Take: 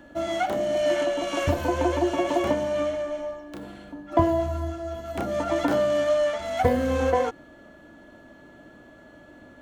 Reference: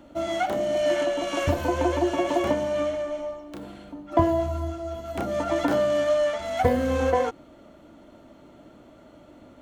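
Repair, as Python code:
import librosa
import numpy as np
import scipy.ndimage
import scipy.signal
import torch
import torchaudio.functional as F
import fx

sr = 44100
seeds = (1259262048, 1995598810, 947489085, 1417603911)

y = fx.notch(x, sr, hz=1700.0, q=30.0)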